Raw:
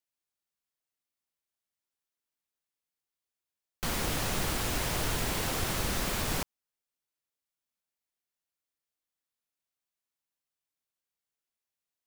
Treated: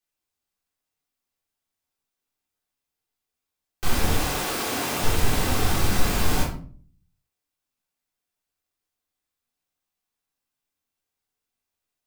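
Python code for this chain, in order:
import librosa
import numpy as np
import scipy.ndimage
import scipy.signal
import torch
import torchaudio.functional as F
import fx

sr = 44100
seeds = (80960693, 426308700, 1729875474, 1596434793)

y = fx.highpass(x, sr, hz=fx.line((4.21, 370.0), (5.02, 170.0)), slope=12, at=(4.21, 5.02), fade=0.02)
y = fx.room_shoebox(y, sr, seeds[0], volume_m3=410.0, walls='furnished', distance_m=3.7)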